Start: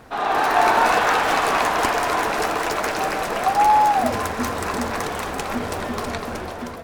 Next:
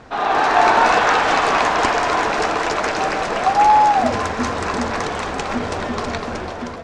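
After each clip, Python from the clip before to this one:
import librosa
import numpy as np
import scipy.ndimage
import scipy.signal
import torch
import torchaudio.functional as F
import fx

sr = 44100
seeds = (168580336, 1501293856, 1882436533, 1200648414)

y = scipy.signal.sosfilt(scipy.signal.butter(4, 7200.0, 'lowpass', fs=sr, output='sos'), x)
y = y * librosa.db_to_amplitude(3.0)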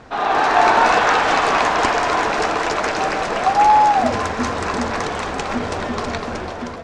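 y = x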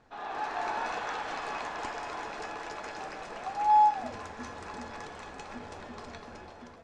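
y = fx.comb_fb(x, sr, f0_hz=840.0, decay_s=0.35, harmonics='all', damping=0.0, mix_pct=80)
y = y * librosa.db_to_amplitude(-7.0)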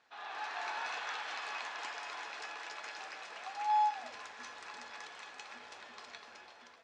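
y = fx.bandpass_q(x, sr, hz=3400.0, q=0.7)
y = y * librosa.db_to_amplitude(1.0)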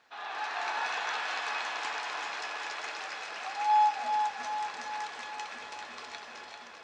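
y = fx.echo_feedback(x, sr, ms=393, feedback_pct=57, wet_db=-6)
y = y * librosa.db_to_amplitude(5.5)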